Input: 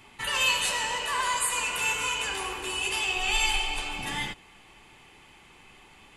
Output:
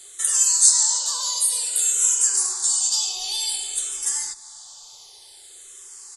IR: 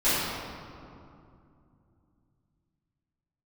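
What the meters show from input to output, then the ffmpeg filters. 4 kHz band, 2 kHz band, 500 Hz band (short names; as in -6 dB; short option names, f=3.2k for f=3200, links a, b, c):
+2.0 dB, -15.0 dB, under -10 dB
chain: -filter_complex "[0:a]acompressor=threshold=-39dB:ratio=2,equalizer=f=9.9k:w=0.51:g=4,asplit=2[a][b];[1:a]atrim=start_sample=2205[c];[b][c]afir=irnorm=-1:irlink=0,volume=-34dB[d];[a][d]amix=inputs=2:normalize=0,aexciter=amount=14.4:drive=5.9:freq=4.1k,acrusher=bits=9:mode=log:mix=0:aa=0.000001,firequalizer=gain_entry='entry(110,0);entry(230,-16);entry(380,10);entry(1600,11);entry(2400,2);entry(3500,12);entry(8700,9);entry(13000,-12)':delay=0.05:min_phase=1,asplit=2[e][f];[f]afreqshift=-0.54[g];[e][g]amix=inputs=2:normalize=1,volume=-10.5dB"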